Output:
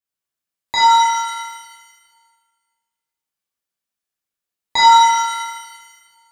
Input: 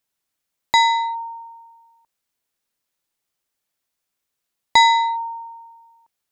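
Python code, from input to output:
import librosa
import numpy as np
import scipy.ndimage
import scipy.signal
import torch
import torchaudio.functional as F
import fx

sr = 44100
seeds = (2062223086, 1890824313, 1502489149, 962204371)

y = fx.noise_reduce_blind(x, sr, reduce_db=9)
y = fx.rev_shimmer(y, sr, seeds[0], rt60_s=1.4, semitones=7, shimmer_db=-8, drr_db=-8.5)
y = F.gain(torch.from_numpy(y), -6.5).numpy()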